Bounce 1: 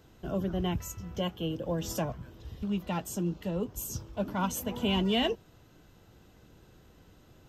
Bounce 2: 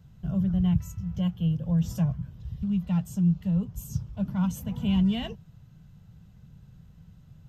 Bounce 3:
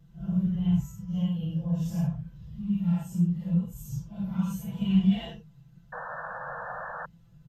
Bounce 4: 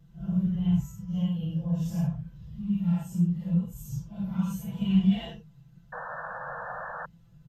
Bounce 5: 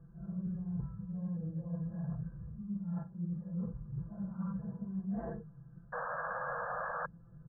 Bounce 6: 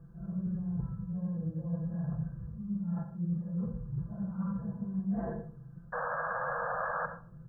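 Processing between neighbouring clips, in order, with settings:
low shelf with overshoot 230 Hz +12 dB, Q 3; level −7 dB
random phases in long frames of 200 ms; comb filter 5.9 ms, depth 99%; sound drawn into the spectrogram noise, 0:05.92–0:07.06, 470–1,800 Hz −31 dBFS; level −6.5 dB
no processing that can be heard
reversed playback; downward compressor 12 to 1, threshold −36 dBFS, peak gain reduction 19.5 dB; reversed playback; Chebyshev low-pass with heavy ripple 1,700 Hz, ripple 6 dB; level +5.5 dB
convolution reverb RT60 0.40 s, pre-delay 61 ms, DRR 9 dB; level +3.5 dB

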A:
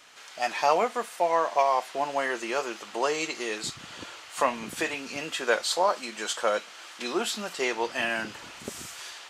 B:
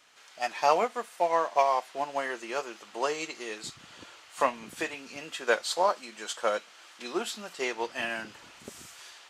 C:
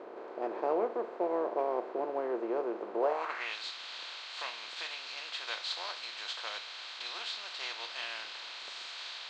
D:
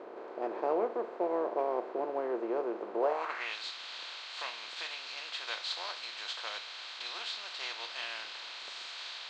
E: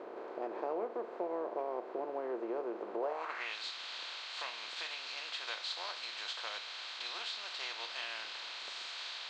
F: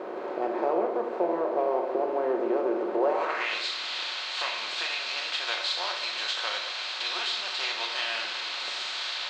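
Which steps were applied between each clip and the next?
expander for the loud parts 1.5 to 1, over −34 dBFS
compressor on every frequency bin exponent 0.4; moving average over 4 samples; band-pass filter sweep 380 Hz → 3,800 Hz, 0:02.97–0:03.58; level −2 dB
no processing that can be heard
downward compressor 2 to 1, threshold −38 dBFS, peak gain reduction 7.5 dB
rectangular room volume 510 cubic metres, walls mixed, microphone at 1 metre; level +9 dB

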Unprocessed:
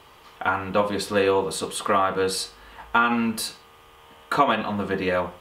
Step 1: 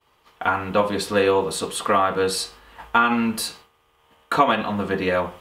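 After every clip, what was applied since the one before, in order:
downward expander −41 dBFS
level +2 dB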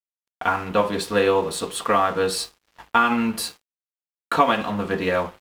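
dead-zone distortion −43 dBFS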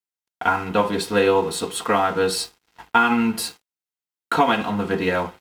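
notch comb filter 580 Hz
level +2.5 dB

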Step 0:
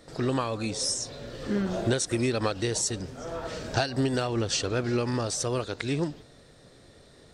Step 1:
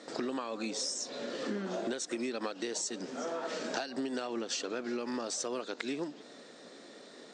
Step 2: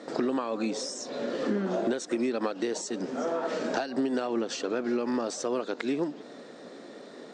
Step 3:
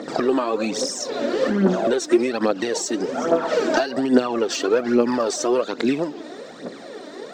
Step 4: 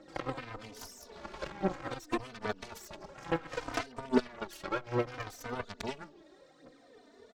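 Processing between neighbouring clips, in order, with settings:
elliptic band-pass filter 230–7,500 Hz, stop band 40 dB; downward compressor 6 to 1, threshold −38 dBFS, peak gain reduction 15 dB; level +4.5 dB
high-shelf EQ 2,000 Hz −10.5 dB; level +8 dB
phase shifter 1.2 Hz, delay 3.4 ms, feedback 61%; level +7.5 dB
harmonic generator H 3 −16 dB, 6 −24 dB, 7 −19 dB, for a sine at −4 dBFS; barber-pole flanger 3.2 ms −0.63 Hz; level −7 dB

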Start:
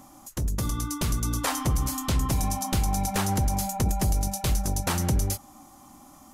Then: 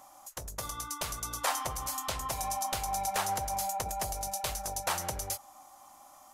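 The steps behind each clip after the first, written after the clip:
low shelf with overshoot 410 Hz −14 dB, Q 1.5
level −3.5 dB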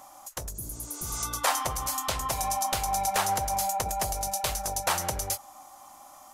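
healed spectral selection 0:00.58–0:01.20, 370–9,100 Hz both
every ending faded ahead of time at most 380 dB per second
level +5 dB

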